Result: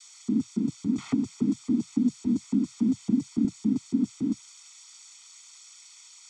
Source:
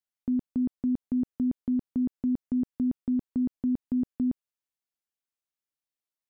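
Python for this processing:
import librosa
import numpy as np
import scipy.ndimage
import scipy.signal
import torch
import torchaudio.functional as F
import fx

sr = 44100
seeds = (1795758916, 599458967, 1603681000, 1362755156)

y = x + 0.5 * 10.0 ** (-34.0 / 20.0) * np.diff(np.sign(x), prepend=np.sign(x[:1]))
y = fx.noise_vocoder(y, sr, seeds[0], bands=12)
y = y + 1.0 * np.pad(y, (int(0.9 * sr / 1000.0), 0))[:len(y)]
y = fx.band_squash(y, sr, depth_pct=70, at=(0.98, 3.45))
y = F.gain(torch.from_numpy(y), -2.0).numpy()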